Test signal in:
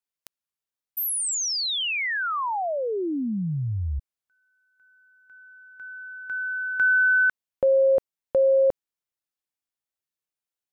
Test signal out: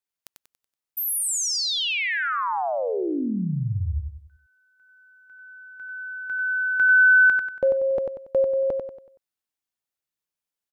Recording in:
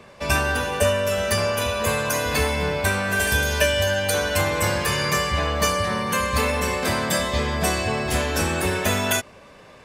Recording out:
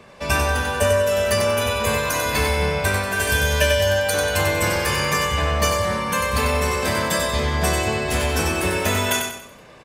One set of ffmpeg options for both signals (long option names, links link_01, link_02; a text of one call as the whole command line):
ffmpeg -i in.wav -af "aecho=1:1:94|188|282|376|470:0.562|0.219|0.0855|0.0334|0.013" out.wav